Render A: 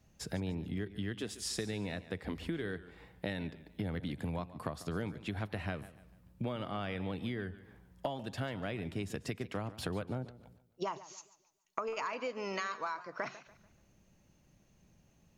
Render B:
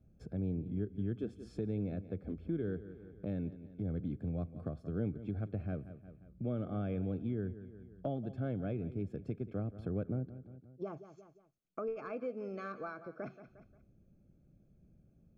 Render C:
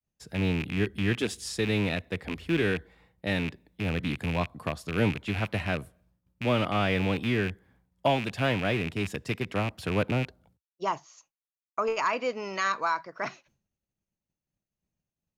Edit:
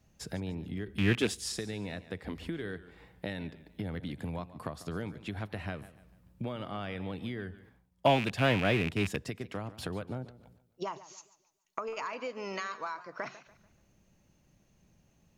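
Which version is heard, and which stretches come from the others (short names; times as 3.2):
A
0.88–1.52 from C
7.69–9.28 from C
not used: B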